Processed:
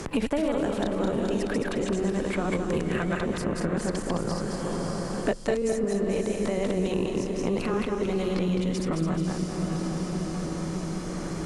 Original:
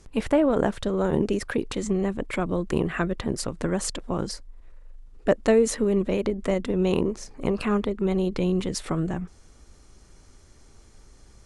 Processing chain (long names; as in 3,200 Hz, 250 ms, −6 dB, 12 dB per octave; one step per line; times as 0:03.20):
feedback delay that plays each chunk backwards 106 ms, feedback 56%, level 0 dB
feedback delay with all-pass diffusion 595 ms, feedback 44%, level −10 dB
multiband upward and downward compressor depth 100%
level −6.5 dB